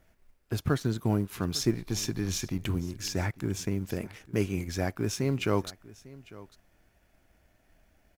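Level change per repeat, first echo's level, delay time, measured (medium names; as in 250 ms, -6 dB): no regular repeats, -20.0 dB, 850 ms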